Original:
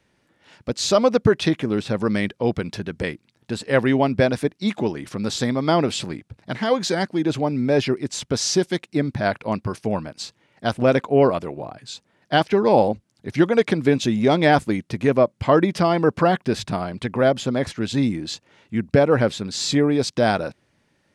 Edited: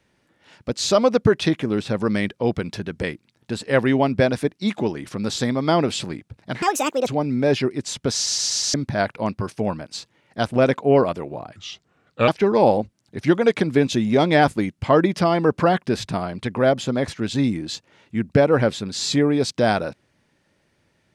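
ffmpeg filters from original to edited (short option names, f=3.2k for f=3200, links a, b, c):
-filter_complex "[0:a]asplit=11[a][b][c][d][e][f][g][h][i][j][k];[a]atrim=end=6.624[l];[b]atrim=start=6.62:end=7.33,asetpts=PTS-STARTPTS,asetrate=69678,aresample=44100,atrim=end_sample=19817,asetpts=PTS-STARTPTS[m];[c]atrim=start=7.326:end=8.522[n];[d]atrim=start=8.398:end=8.522[o];[e]atrim=start=8.398:end=8.522[p];[f]atrim=start=8.398:end=8.522[q];[g]atrim=start=8.398:end=8.522[r];[h]atrim=start=8.998:end=11.824[s];[i]atrim=start=11.82:end=12.39,asetpts=PTS-STARTPTS,asetrate=34839,aresample=44100[t];[j]atrim=start=12.386:end=14.902[u];[k]atrim=start=15.378[v];[l][m]acrossfade=d=0.004:c1=hsin:c2=hsin[w];[w][n]acrossfade=d=0.004:c1=hsin:c2=hsin[x];[x][o]acrossfade=d=0.004:c1=hsin:c2=hsin[y];[y][p]acrossfade=d=0.004:c1=hsin:c2=hsin[z];[z][q]acrossfade=d=0.004:c1=hsin:c2=hsin[aa];[aa][r]acrossfade=d=0.004:c1=hsin:c2=hsin[ab];[ab][s]acrossfade=d=0.004:c1=hsin:c2=hsin[ac];[ac][t]acrossfade=d=0.004:c1=hsin:c2=hsin[ad];[ad][u]acrossfade=d=0.004:c1=hsin:c2=hsin[ae];[ae][v]acrossfade=d=0.004:c1=hsin:c2=hsin"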